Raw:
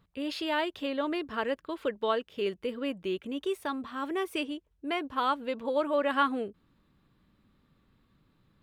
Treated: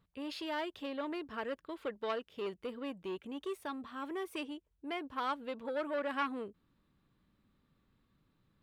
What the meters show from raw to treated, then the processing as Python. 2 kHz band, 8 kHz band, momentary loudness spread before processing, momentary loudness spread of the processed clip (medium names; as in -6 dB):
-7.5 dB, -6.5 dB, 7 LU, 7 LU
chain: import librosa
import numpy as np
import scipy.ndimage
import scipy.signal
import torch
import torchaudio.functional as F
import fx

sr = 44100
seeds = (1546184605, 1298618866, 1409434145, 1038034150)

y = fx.transformer_sat(x, sr, knee_hz=1200.0)
y = y * librosa.db_to_amplitude(-6.5)